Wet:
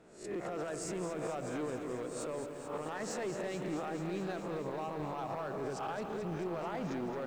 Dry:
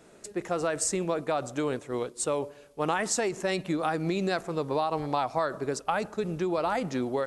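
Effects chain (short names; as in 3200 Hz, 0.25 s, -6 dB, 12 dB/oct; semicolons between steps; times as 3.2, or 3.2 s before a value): spectral swells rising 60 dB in 0.43 s; recorder AGC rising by 18 dB/s; LPF 2000 Hz 6 dB/oct; limiter -24 dBFS, peak gain reduction 10.5 dB; overloaded stage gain 27.5 dB; lo-fi delay 0.218 s, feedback 80%, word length 10-bit, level -9 dB; gain -6 dB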